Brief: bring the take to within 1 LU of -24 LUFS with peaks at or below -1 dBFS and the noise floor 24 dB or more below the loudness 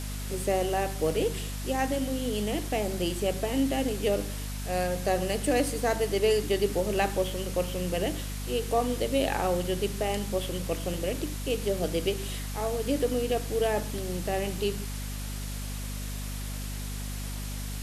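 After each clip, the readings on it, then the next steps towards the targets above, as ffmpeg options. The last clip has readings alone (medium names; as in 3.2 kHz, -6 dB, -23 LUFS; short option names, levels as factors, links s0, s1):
hum 50 Hz; highest harmonic 250 Hz; hum level -33 dBFS; noise floor -35 dBFS; noise floor target -54 dBFS; loudness -29.5 LUFS; peak level -11.5 dBFS; loudness target -24.0 LUFS
-> -af "bandreject=f=50:t=h:w=6,bandreject=f=100:t=h:w=6,bandreject=f=150:t=h:w=6,bandreject=f=200:t=h:w=6,bandreject=f=250:t=h:w=6"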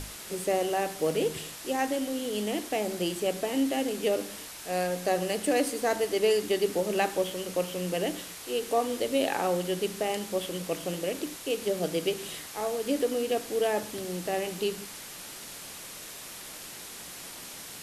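hum not found; noise floor -43 dBFS; noise floor target -55 dBFS
-> -af "afftdn=nr=12:nf=-43"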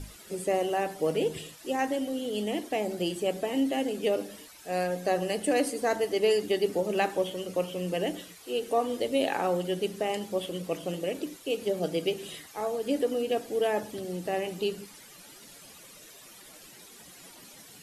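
noise floor -51 dBFS; noise floor target -54 dBFS
-> -af "afftdn=nr=6:nf=-51"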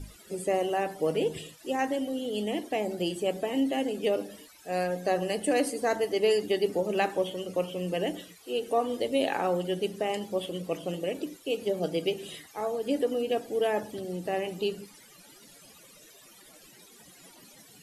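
noise floor -54 dBFS; loudness -30.0 LUFS; peak level -12.0 dBFS; loudness target -24.0 LUFS
-> -af "volume=2"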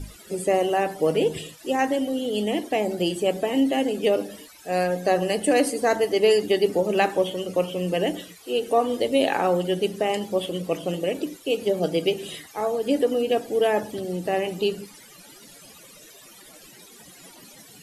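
loudness -24.0 LUFS; peak level -6.0 dBFS; noise floor -48 dBFS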